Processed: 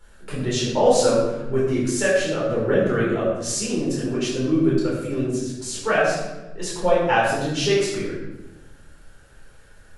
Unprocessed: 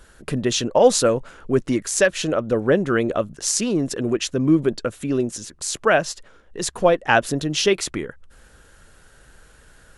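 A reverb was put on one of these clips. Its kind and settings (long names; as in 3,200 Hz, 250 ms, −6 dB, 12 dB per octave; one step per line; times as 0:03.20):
rectangular room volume 520 cubic metres, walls mixed, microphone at 4.3 metres
level −12 dB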